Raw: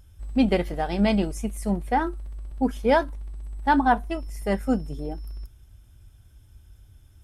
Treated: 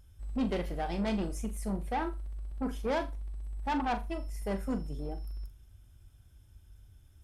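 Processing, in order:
soft clipping −21 dBFS, distortion −9 dB
on a send: flutter between parallel walls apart 7.1 metres, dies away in 0.24 s
on the sum: level −6 dB

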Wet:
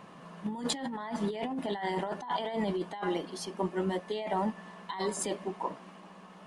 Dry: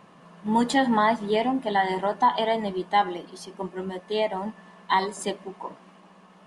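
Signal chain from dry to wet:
compressor whose output falls as the input rises −30 dBFS, ratio −1
level −3.5 dB

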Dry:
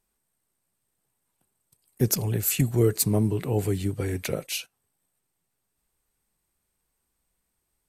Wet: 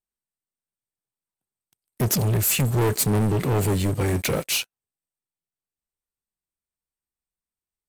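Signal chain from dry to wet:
leveller curve on the samples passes 5
level −8 dB

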